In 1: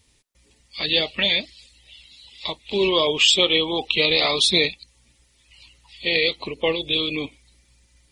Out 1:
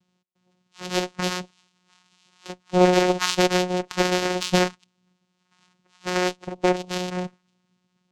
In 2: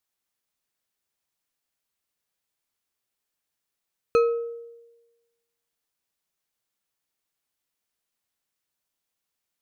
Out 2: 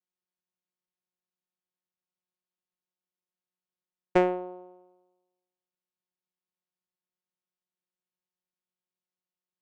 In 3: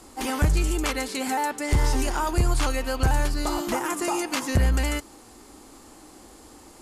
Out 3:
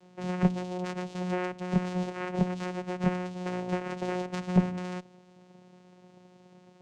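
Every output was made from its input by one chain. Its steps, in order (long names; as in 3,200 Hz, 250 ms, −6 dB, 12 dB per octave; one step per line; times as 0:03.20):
channel vocoder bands 4, saw 181 Hz
harmonic generator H 3 −25 dB, 4 −21 dB, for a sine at −6 dBFS
expander for the loud parts 1.5 to 1, over −32 dBFS
level +2.5 dB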